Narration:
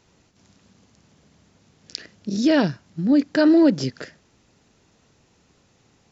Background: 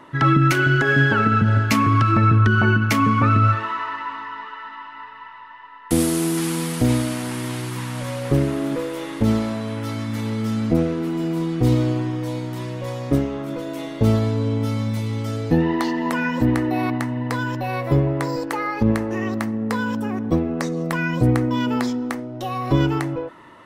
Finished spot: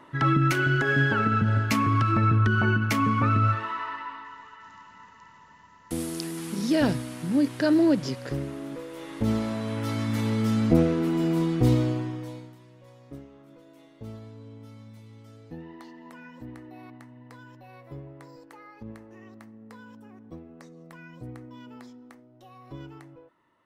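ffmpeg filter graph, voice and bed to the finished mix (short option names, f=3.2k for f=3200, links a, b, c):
-filter_complex "[0:a]adelay=4250,volume=-5.5dB[a];[1:a]volume=5.5dB,afade=t=out:st=3.9:d=0.5:silence=0.473151,afade=t=in:st=8.87:d=1.21:silence=0.266073,afade=t=out:st=11.39:d=1.19:silence=0.0749894[b];[a][b]amix=inputs=2:normalize=0"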